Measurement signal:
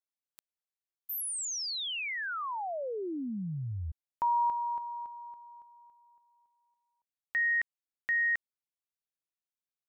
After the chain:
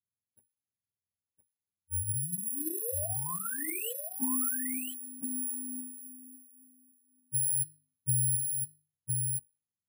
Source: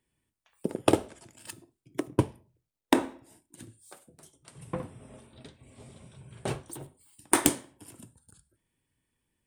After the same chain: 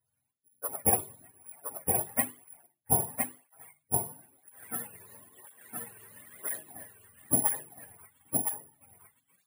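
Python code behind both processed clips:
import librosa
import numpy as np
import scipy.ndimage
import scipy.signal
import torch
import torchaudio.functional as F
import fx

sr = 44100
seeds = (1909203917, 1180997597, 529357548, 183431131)

y = fx.octave_mirror(x, sr, pivot_hz=490.0)
y = scipy.signal.sosfilt(scipy.signal.butter(2, 5400.0, 'lowpass', fs=sr, output='sos'), y)
y = fx.low_shelf(y, sr, hz=190.0, db=-4.0)
y = fx.hum_notches(y, sr, base_hz=50, count=7)
y = y + 10.0 ** (-3.5 / 20.0) * np.pad(y, (int(1014 * sr / 1000.0), 0))[:len(y)]
y = (np.kron(y[::4], np.eye(4)[0]) * 4)[:len(y)]
y = fx.flanger_cancel(y, sr, hz=1.0, depth_ms=3.9)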